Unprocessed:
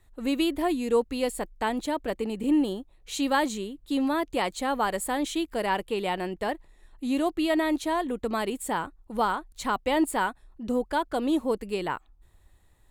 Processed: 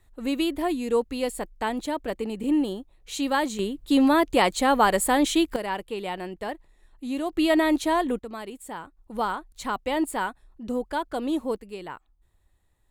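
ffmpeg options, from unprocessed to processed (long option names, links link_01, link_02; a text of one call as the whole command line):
ffmpeg -i in.wav -af "asetnsamples=nb_out_samples=441:pad=0,asendcmd='3.59 volume volume 7dB;5.56 volume volume -3dB;7.33 volume volume 4dB;8.19 volume volume -8dB;8.97 volume volume -1.5dB;11.56 volume volume -7.5dB',volume=0dB" out.wav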